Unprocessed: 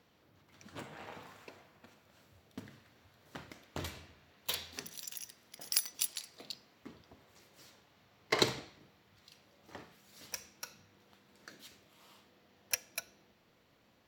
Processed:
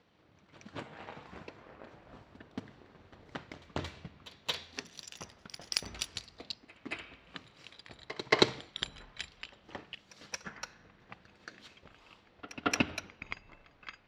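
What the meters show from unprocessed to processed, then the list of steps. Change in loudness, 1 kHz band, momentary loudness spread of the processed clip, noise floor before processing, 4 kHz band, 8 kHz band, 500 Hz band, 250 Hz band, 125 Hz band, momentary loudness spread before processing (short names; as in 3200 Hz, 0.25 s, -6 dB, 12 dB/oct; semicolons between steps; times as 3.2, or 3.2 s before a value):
+1.0 dB, +5.5 dB, 23 LU, -69 dBFS, +3.5 dB, -4.0 dB, +5.0 dB, +7.5 dB, +4.0 dB, 23 LU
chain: LPF 4700 Hz 12 dB/oct; echoes that change speed 0.187 s, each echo -7 st, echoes 3, each echo -6 dB; transient shaper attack +6 dB, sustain -2 dB; pre-echo 0.225 s -17 dB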